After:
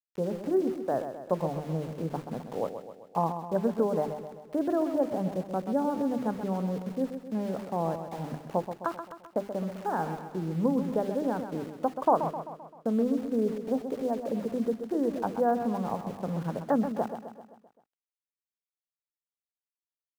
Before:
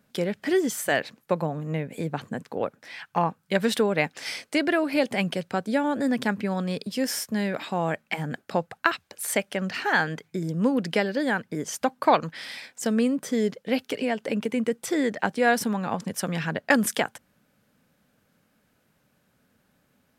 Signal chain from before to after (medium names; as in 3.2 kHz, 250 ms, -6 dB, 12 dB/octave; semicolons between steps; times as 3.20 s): inverse Chebyshev low-pass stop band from 2.2 kHz, stop band 40 dB; hum notches 50/100/150/200/250/300/350/400 Hz; small samples zeroed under -40 dBFS; feedback delay 130 ms, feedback 54%, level -9 dB; trim -3 dB